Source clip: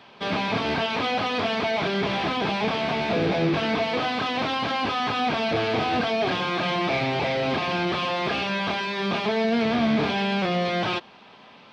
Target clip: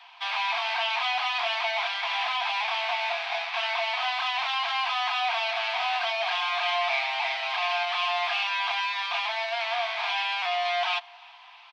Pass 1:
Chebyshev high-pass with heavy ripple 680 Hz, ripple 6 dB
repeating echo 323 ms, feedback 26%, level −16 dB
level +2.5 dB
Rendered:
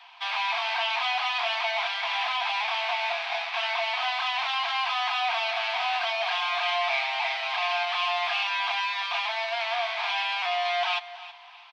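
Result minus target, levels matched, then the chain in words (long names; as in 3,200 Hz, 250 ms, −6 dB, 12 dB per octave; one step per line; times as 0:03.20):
echo-to-direct +11.5 dB
Chebyshev high-pass with heavy ripple 680 Hz, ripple 6 dB
repeating echo 323 ms, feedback 26%, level −27.5 dB
level +2.5 dB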